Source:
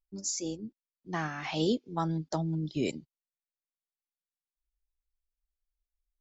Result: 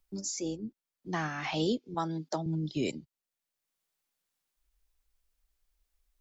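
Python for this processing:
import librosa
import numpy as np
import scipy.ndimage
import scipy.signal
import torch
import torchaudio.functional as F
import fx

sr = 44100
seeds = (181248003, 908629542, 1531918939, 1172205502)

y = fx.highpass(x, sr, hz=210.0, slope=12, at=(1.94, 2.46))
y = fx.band_squash(y, sr, depth_pct=40)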